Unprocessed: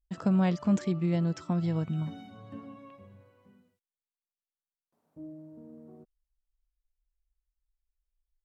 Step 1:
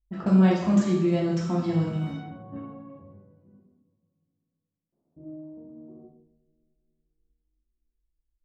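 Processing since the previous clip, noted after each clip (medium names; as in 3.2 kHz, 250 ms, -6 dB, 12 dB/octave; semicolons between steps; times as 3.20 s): two-slope reverb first 0.81 s, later 3.4 s, from -22 dB, DRR -4.5 dB; level-controlled noise filter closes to 390 Hz, open at -25.5 dBFS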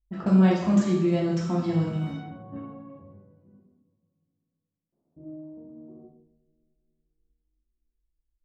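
no audible change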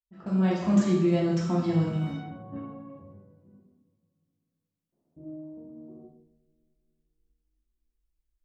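fade-in on the opening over 0.84 s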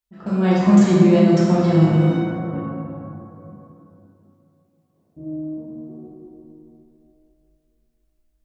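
plate-style reverb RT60 3.1 s, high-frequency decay 0.35×, DRR 0.5 dB; trim +7.5 dB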